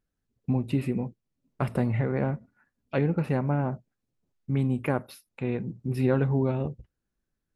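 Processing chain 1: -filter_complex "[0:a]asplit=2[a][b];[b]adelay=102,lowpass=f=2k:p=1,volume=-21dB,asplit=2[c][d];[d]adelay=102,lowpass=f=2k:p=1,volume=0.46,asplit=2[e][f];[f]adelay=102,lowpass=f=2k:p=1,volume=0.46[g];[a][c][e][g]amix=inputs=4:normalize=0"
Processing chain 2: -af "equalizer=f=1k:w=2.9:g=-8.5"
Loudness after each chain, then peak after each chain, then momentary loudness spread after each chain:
-28.5, -29.0 LUFS; -12.0, -12.5 dBFS; 12, 12 LU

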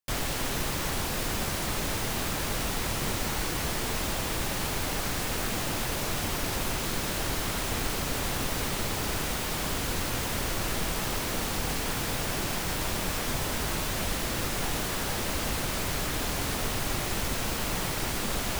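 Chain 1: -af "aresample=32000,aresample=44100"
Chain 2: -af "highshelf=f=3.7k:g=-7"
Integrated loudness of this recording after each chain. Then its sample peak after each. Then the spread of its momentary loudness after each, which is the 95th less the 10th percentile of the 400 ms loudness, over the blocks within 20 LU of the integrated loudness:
-30.0, -32.0 LUFS; -16.5, -17.5 dBFS; 0, 0 LU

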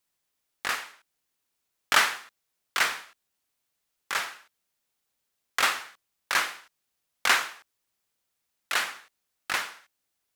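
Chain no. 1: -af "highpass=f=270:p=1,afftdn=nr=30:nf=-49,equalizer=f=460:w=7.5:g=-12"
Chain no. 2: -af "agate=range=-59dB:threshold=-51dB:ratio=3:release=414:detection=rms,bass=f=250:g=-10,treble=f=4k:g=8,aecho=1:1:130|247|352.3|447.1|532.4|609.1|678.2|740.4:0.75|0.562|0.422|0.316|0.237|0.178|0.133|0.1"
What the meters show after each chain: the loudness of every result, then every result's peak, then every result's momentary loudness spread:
-27.5, -23.5 LUFS; -6.0, -3.5 dBFS; 15, 15 LU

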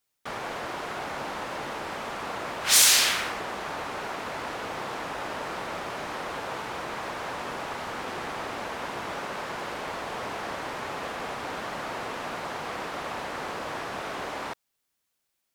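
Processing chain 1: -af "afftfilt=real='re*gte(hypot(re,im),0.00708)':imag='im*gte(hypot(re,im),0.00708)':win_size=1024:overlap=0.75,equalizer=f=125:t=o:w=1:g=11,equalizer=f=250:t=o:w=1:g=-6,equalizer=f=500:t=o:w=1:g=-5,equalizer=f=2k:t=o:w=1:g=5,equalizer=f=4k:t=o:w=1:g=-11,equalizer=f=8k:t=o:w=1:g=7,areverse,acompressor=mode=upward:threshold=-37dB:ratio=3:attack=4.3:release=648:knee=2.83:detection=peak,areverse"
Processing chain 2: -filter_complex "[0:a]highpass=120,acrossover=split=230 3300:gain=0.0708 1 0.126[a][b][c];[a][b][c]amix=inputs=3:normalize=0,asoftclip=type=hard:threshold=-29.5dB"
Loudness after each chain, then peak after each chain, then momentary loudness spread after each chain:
-28.5, -35.0 LUFS; -4.0, -29.5 dBFS; 5, 2 LU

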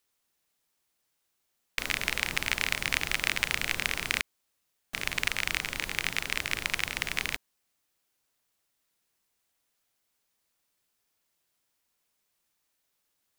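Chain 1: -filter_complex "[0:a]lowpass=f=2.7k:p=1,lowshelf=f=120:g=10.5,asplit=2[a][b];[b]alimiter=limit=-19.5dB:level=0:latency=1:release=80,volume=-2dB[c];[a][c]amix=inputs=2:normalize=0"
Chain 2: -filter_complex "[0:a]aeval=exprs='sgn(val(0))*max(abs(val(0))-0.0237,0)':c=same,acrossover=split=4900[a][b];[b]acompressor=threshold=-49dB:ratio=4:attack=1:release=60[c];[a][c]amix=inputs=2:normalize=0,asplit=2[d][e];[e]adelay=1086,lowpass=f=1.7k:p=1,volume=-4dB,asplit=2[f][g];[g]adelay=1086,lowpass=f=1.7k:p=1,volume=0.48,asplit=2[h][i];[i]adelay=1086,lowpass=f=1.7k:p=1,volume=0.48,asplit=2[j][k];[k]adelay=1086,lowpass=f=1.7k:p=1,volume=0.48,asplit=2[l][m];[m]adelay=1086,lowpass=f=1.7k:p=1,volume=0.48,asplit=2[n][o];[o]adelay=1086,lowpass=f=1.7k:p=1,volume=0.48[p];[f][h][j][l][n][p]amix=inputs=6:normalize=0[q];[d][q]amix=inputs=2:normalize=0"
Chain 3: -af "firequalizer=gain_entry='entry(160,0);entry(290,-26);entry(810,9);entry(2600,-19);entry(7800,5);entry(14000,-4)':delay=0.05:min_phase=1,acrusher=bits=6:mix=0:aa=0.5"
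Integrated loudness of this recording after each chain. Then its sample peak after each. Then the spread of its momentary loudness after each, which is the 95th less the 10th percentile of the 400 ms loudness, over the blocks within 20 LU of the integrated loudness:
-29.5, -32.5, -36.0 LUFS; -7.0, -7.5, -8.5 dBFS; 6, 19, 7 LU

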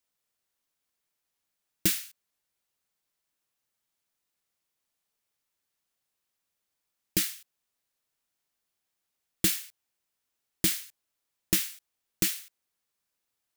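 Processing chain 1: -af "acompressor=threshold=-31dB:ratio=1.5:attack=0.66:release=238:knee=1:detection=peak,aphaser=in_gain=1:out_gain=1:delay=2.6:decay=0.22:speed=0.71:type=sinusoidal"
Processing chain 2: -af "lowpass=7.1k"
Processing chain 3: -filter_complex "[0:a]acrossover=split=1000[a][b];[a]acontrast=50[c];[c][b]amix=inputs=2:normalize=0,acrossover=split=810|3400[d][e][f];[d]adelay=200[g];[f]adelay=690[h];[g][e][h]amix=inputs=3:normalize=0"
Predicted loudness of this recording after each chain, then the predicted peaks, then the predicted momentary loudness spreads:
-34.0, -33.5, -31.0 LUFS; -13.5, -11.5, -9.0 dBFS; 15, 11, 13 LU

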